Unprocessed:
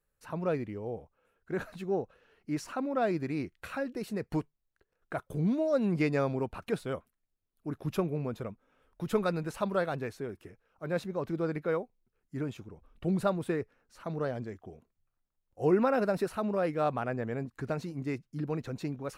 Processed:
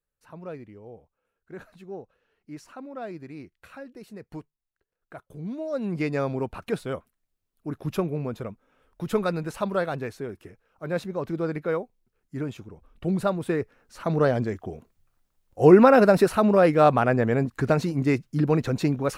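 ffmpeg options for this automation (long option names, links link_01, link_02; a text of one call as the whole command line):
ffmpeg -i in.wav -af "volume=12dB,afade=type=in:start_time=5.4:duration=1.05:silence=0.281838,afade=type=in:start_time=13.4:duration=0.83:silence=0.398107" out.wav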